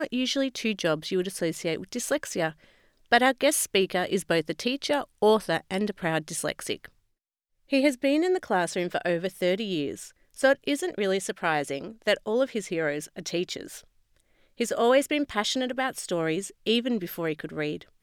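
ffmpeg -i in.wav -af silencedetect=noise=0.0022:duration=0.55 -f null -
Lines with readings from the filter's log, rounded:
silence_start: 6.90
silence_end: 7.69 | silence_duration: 0.79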